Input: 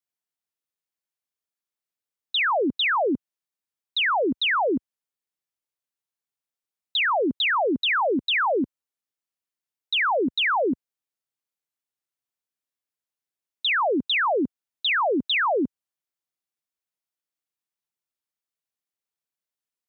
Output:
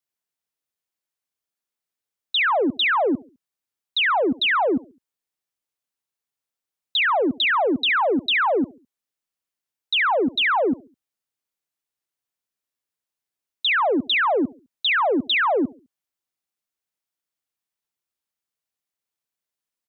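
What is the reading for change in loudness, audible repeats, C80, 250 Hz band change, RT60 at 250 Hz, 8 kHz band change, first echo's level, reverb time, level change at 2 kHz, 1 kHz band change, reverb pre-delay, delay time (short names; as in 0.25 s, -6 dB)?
+2.5 dB, 2, none, +2.5 dB, none, n/a, -23.0 dB, none, +2.5 dB, +2.5 dB, none, 69 ms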